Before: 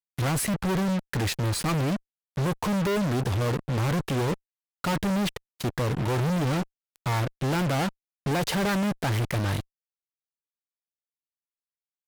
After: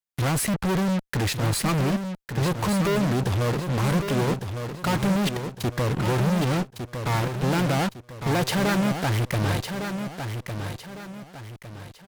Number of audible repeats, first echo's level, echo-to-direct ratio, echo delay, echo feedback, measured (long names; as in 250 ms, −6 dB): 4, −7.5 dB, −7.0 dB, 1,156 ms, 37%